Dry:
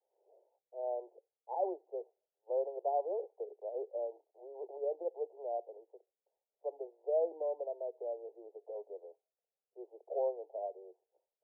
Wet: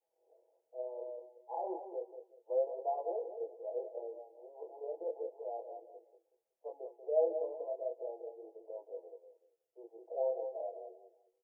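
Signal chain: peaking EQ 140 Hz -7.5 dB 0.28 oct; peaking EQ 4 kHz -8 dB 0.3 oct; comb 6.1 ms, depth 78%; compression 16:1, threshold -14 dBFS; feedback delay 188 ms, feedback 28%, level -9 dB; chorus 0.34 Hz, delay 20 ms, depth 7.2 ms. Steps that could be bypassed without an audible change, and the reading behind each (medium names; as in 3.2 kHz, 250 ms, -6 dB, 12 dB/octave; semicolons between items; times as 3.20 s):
peaking EQ 140 Hz: input has nothing below 300 Hz; peaking EQ 4 kHz: input has nothing above 910 Hz; compression, threshold -14 dBFS: peak at its input -18.5 dBFS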